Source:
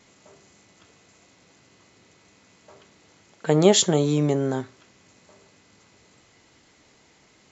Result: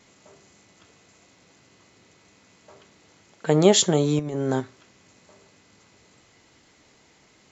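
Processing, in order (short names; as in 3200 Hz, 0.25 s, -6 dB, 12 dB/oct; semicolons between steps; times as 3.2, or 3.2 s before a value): 4.19–4.6 negative-ratio compressor -25 dBFS, ratio -0.5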